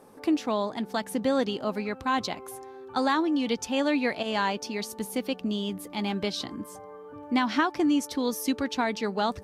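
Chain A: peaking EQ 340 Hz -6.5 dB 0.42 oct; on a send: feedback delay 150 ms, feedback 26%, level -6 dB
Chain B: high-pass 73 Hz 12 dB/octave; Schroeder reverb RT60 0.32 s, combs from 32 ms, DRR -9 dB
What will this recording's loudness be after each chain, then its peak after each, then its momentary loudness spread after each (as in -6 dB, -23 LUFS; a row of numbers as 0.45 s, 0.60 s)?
-28.5 LUFS, -19.0 LUFS; -12.5 dBFS, -3.5 dBFS; 9 LU, 10 LU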